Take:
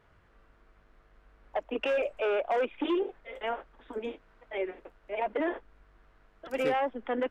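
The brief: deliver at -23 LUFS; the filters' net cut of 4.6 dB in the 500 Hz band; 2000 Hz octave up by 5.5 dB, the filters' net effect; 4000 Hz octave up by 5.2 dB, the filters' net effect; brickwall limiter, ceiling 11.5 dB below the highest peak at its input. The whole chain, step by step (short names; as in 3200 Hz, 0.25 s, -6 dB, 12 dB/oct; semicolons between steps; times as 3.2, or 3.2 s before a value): bell 500 Hz -6 dB; bell 2000 Hz +6 dB; bell 4000 Hz +4.5 dB; gain +16.5 dB; limiter -12.5 dBFS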